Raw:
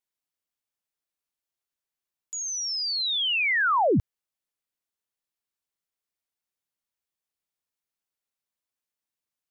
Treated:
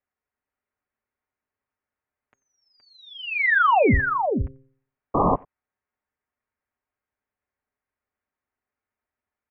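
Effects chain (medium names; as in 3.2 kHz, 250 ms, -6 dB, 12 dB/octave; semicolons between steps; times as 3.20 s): comb 6 ms, depth 51%; in parallel at +2 dB: peak limiter -23.5 dBFS, peak gain reduction 10 dB; on the sum: de-hum 129.6 Hz, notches 6; on a send: delay 470 ms -6 dB; on the sum: painted sound noise, 5.14–5.36 s, 250–1500 Hz -19 dBFS; speakerphone echo 90 ms, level -26 dB; mistuned SSB -250 Hz 190–2400 Hz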